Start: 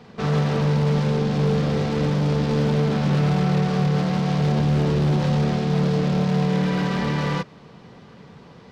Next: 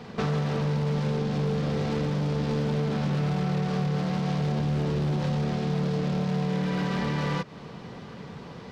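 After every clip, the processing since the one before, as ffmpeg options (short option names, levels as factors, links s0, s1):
-af "acompressor=threshold=0.0355:ratio=6,volume=1.58"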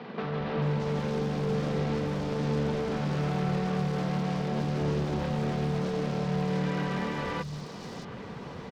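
-filter_complex "[0:a]alimiter=limit=0.0708:level=0:latency=1:release=452,acrossover=split=150|4100[s0][s1][s2];[s0]adelay=220[s3];[s2]adelay=620[s4];[s3][s1][s4]amix=inputs=3:normalize=0,volume=1.26"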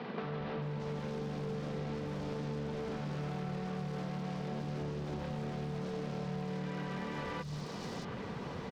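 -af "acompressor=threshold=0.0158:ratio=6"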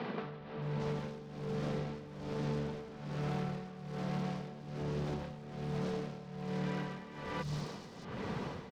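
-af "tremolo=f=1.2:d=0.78,volume=1.41"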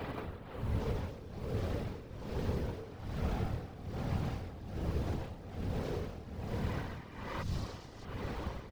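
-af "acrusher=bits=7:mode=log:mix=0:aa=0.000001,afftfilt=real='hypot(re,im)*cos(2*PI*random(0))':imag='hypot(re,im)*sin(2*PI*random(1))':win_size=512:overlap=0.75,lowshelf=f=120:t=q:w=1.5:g=7.5,volume=1.78"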